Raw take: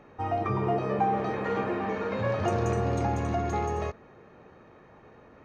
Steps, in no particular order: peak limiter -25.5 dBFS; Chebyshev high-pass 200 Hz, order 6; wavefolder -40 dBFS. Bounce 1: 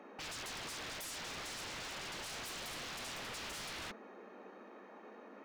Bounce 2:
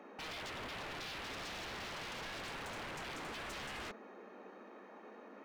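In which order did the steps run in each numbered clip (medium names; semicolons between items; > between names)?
Chebyshev high-pass > wavefolder > peak limiter; peak limiter > Chebyshev high-pass > wavefolder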